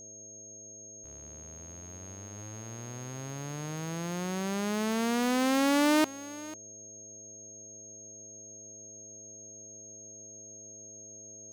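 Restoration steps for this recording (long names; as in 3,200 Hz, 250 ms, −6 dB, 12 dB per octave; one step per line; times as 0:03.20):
hum removal 106.5 Hz, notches 6
notch filter 6,500 Hz, Q 30
echo removal 496 ms −18.5 dB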